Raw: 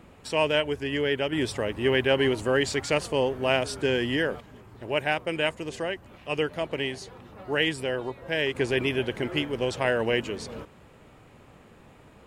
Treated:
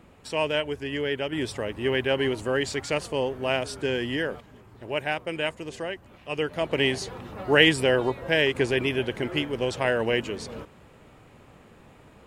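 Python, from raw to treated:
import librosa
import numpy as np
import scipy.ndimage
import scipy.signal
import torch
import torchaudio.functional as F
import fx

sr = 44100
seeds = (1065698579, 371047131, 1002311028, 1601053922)

y = fx.gain(x, sr, db=fx.line((6.35, -2.0), (6.89, 7.5), (8.14, 7.5), (8.78, 0.5)))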